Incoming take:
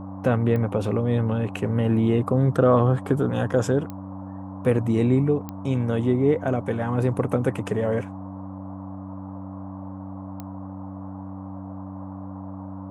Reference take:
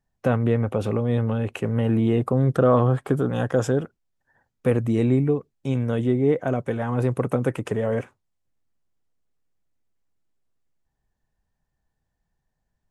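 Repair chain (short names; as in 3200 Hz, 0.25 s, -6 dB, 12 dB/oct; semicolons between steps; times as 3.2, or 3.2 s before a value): de-click; de-hum 95.8 Hz, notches 3; noise print and reduce 30 dB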